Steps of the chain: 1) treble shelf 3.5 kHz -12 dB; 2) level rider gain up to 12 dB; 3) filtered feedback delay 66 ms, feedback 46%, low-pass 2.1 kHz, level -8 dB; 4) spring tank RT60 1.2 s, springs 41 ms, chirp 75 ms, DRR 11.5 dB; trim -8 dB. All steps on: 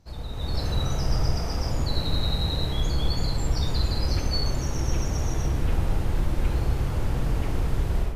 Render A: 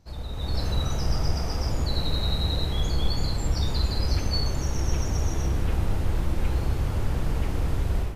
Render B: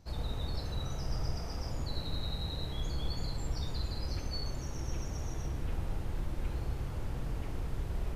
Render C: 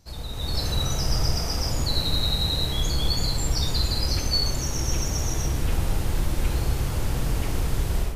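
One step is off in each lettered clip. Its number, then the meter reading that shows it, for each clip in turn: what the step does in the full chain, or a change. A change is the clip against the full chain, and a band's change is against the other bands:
3, echo-to-direct -7.0 dB to -11.5 dB; 2, loudness change -11.0 LU; 1, 4 kHz band +6.5 dB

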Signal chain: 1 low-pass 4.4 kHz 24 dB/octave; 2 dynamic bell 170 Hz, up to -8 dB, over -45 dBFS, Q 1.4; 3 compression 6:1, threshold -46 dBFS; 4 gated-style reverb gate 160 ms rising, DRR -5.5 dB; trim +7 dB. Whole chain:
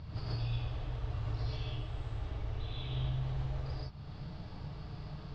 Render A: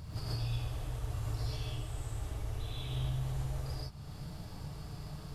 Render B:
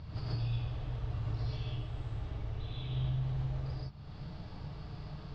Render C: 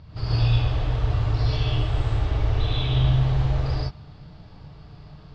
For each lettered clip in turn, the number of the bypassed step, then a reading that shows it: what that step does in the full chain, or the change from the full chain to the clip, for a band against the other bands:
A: 1, 4 kHz band +1.5 dB; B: 2, 250 Hz band +3.0 dB; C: 3, mean gain reduction 10.5 dB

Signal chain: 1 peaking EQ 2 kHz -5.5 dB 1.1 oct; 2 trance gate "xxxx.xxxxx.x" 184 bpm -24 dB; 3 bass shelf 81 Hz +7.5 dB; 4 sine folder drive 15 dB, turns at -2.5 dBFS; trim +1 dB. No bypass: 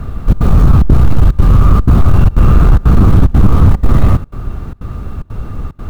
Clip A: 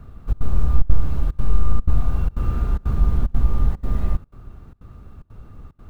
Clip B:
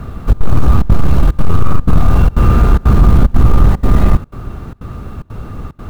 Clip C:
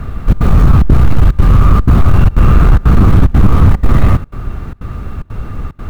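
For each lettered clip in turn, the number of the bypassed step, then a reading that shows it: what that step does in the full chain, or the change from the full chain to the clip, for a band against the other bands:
4, crest factor change +7.5 dB; 3, 125 Hz band -3.0 dB; 1, 2 kHz band +4.0 dB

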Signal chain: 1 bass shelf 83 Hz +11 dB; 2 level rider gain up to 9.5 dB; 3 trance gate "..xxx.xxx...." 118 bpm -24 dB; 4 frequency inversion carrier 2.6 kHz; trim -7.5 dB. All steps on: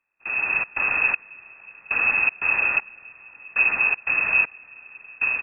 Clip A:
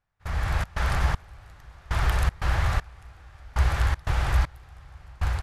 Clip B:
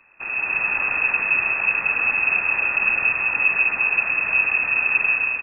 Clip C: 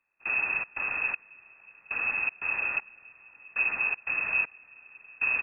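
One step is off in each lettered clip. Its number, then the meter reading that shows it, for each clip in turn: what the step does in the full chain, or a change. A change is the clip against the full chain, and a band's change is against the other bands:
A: 4, 2 kHz band -16.5 dB; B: 3, crest factor change -2.5 dB; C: 2, loudness change -7.5 LU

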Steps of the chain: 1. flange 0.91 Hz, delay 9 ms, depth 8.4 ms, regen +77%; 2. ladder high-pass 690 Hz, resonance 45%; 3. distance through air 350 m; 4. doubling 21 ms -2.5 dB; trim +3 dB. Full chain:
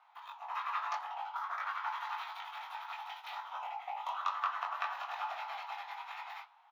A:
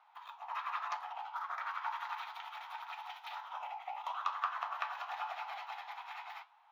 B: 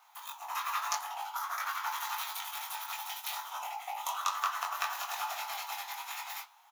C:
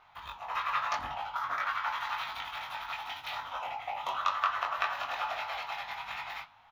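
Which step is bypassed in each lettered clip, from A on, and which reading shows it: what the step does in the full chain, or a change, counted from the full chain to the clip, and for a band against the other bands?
4, loudness change -1.5 LU; 3, 4 kHz band +7.0 dB; 2, 1 kHz band -4.5 dB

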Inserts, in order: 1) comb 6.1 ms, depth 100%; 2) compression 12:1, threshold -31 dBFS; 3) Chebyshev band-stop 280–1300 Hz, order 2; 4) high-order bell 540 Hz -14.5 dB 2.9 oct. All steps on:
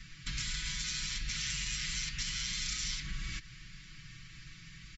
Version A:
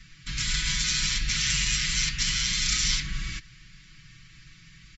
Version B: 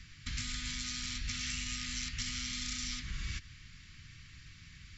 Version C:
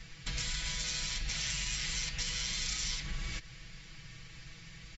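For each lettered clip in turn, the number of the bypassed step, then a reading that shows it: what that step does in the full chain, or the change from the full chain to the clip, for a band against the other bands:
2, mean gain reduction 6.0 dB; 1, 250 Hz band +4.5 dB; 3, 1 kHz band +3.0 dB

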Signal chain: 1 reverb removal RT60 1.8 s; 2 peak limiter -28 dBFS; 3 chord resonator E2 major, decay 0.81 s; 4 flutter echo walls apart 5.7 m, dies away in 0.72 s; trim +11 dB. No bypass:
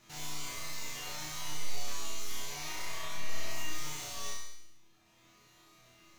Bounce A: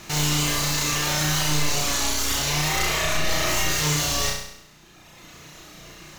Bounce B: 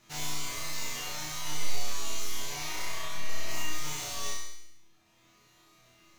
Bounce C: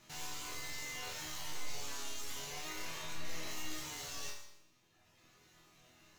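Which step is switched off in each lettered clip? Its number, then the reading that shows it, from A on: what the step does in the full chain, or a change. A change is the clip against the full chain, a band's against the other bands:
3, 125 Hz band +5.0 dB; 2, mean gain reduction 3.0 dB; 4, crest factor change +2.5 dB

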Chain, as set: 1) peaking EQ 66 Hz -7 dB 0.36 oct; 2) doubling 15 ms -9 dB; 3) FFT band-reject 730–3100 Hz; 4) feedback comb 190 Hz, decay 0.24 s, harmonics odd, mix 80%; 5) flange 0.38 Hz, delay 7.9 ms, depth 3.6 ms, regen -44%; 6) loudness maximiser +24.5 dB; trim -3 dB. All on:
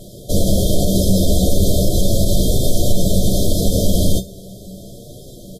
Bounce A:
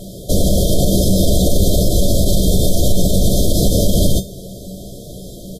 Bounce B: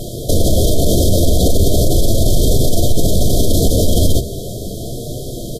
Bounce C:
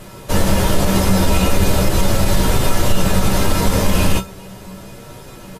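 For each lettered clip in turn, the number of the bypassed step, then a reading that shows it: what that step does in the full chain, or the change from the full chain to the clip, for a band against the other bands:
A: 5, momentary loudness spread change -2 LU; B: 4, 250 Hz band -2.5 dB; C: 3, 1 kHz band +13.0 dB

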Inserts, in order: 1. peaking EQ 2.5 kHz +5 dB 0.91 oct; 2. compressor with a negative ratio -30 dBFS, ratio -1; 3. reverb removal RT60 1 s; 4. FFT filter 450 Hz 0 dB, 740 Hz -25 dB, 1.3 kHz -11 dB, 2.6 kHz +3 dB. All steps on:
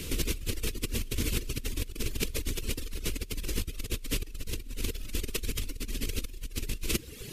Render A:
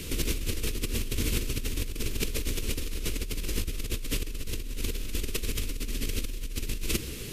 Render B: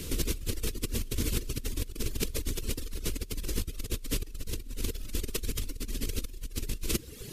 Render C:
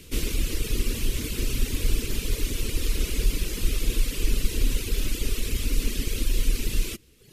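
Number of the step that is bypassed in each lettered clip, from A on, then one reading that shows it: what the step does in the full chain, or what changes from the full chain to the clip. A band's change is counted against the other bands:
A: 3, loudness change +2.0 LU; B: 1, 2 kHz band -4.0 dB; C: 2, crest factor change -3.5 dB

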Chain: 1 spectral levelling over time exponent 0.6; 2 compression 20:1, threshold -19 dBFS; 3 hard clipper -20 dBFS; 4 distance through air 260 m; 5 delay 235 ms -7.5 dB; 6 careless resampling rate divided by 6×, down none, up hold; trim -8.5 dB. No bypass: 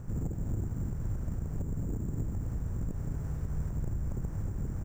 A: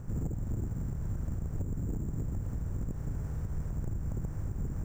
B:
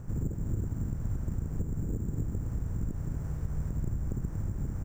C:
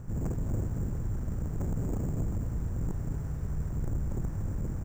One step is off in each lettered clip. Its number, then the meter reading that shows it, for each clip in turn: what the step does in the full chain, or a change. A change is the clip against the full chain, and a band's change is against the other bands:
5, crest factor change -2.5 dB; 3, distortion -14 dB; 2, mean gain reduction 4.0 dB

